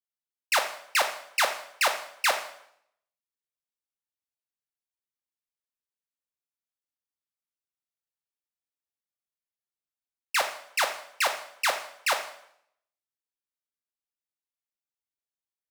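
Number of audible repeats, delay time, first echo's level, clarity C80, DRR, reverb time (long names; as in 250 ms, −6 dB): no echo audible, no echo audible, no echo audible, 13.0 dB, 4.5 dB, 0.70 s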